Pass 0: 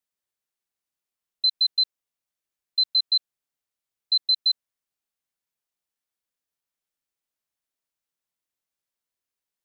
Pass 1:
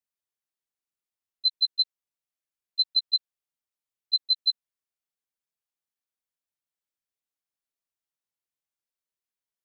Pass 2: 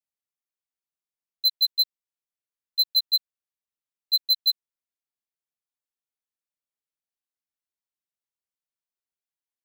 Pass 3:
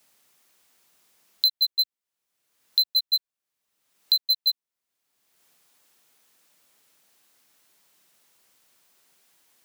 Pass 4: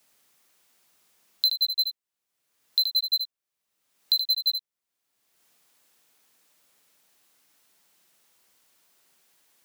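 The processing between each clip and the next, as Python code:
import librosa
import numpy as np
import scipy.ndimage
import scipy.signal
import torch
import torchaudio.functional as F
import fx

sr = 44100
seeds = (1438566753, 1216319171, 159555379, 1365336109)

y1 = fx.level_steps(x, sr, step_db=19)
y2 = fx.leveller(y1, sr, passes=3)
y3 = fx.band_squash(y2, sr, depth_pct=100)
y4 = y3 + 10.0 ** (-7.5 / 20.0) * np.pad(y3, (int(76 * sr / 1000.0), 0))[:len(y3)]
y4 = F.gain(torch.from_numpy(y4), -2.0).numpy()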